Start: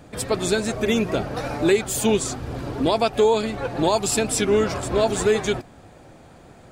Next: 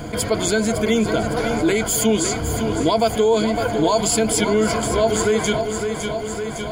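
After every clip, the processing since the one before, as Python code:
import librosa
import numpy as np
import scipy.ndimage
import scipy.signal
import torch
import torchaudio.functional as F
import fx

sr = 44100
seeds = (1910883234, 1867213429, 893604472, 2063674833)

y = fx.ripple_eq(x, sr, per_octave=1.8, db=12)
y = fx.echo_feedback(y, sr, ms=558, feedback_pct=52, wet_db=-12.0)
y = fx.env_flatten(y, sr, amount_pct=50)
y = y * librosa.db_to_amplitude(-3.0)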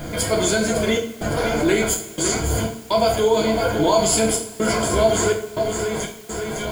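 y = fx.step_gate(x, sr, bpm=62, pattern='xxxx.xxx.xx.xx', floor_db=-60.0, edge_ms=4.5)
y = fx.quant_dither(y, sr, seeds[0], bits=8, dither='triangular')
y = fx.rev_double_slope(y, sr, seeds[1], early_s=0.43, late_s=2.2, knee_db=-20, drr_db=-0.5)
y = y * librosa.db_to_amplitude(-2.0)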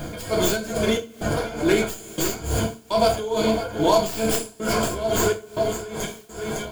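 y = fx.tracing_dist(x, sr, depth_ms=0.12)
y = fx.notch(y, sr, hz=2000.0, q=12.0)
y = y * (1.0 - 0.76 / 2.0 + 0.76 / 2.0 * np.cos(2.0 * np.pi * 2.3 * (np.arange(len(y)) / sr)))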